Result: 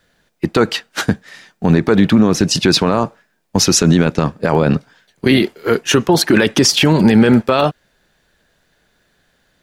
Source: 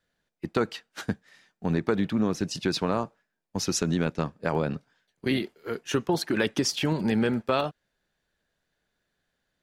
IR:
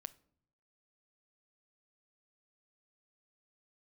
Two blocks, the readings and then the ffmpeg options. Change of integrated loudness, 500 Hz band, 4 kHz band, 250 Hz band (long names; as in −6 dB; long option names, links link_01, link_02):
+14.0 dB, +13.0 dB, +16.0 dB, +14.5 dB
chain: -af "alimiter=level_in=19dB:limit=-1dB:release=50:level=0:latency=1,volume=-1dB"